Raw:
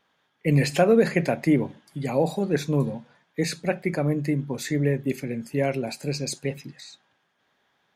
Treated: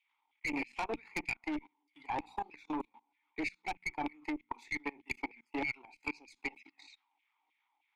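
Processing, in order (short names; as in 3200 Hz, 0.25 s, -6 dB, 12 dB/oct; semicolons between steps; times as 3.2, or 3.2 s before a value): tremolo 8.4 Hz, depth 37%; on a send at -15 dB: reverb RT60 0.70 s, pre-delay 3 ms; on the sum: transient shaper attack +11 dB, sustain -8 dB; LFO high-pass saw down 3.2 Hz 610–2500 Hz; vowel filter u; high shelf 3000 Hz +6 dB; in parallel at +2 dB: compressor 6:1, threshold -58 dBFS, peak gain reduction 29.5 dB; on the sum: bell 67 Hz +13.5 dB 1.7 oct; notches 60/120/180/240 Hz; tube stage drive 31 dB, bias 0.45; level quantiser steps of 23 dB; gain +11.5 dB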